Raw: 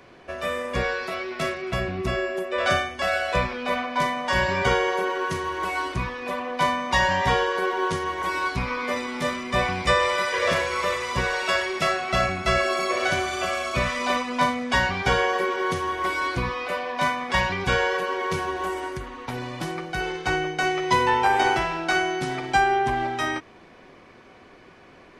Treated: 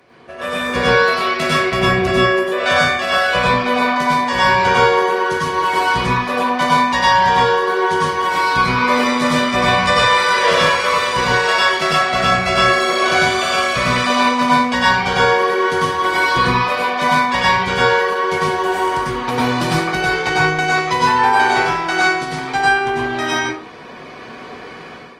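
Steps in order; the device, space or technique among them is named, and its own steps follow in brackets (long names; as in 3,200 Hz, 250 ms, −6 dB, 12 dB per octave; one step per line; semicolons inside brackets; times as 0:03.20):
parametric band 4,300 Hz +3.5 dB 0.39 octaves
far-field microphone of a smart speaker (convolution reverb RT60 0.45 s, pre-delay 93 ms, DRR −5.5 dB; high-pass filter 140 Hz 6 dB per octave; automatic gain control; level −1 dB; Opus 32 kbit/s 48,000 Hz)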